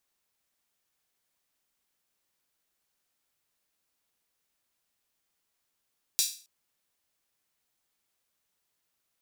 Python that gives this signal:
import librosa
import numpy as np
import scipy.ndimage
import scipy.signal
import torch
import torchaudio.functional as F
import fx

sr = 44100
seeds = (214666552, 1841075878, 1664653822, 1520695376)

y = fx.drum_hat_open(sr, length_s=0.27, from_hz=4500.0, decay_s=0.39)